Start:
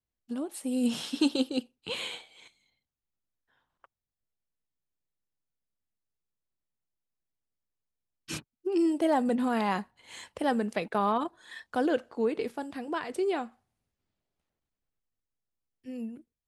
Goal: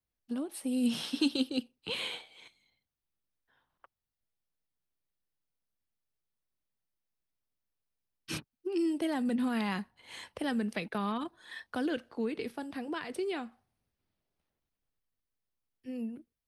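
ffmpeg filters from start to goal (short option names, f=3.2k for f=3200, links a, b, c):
-filter_complex "[0:a]equalizer=f=7.2k:t=o:w=0.26:g=-10.5,acrossover=split=310|1500|4500[a][b][c][d];[b]acompressor=threshold=-40dB:ratio=6[e];[a][e][c][d]amix=inputs=4:normalize=0"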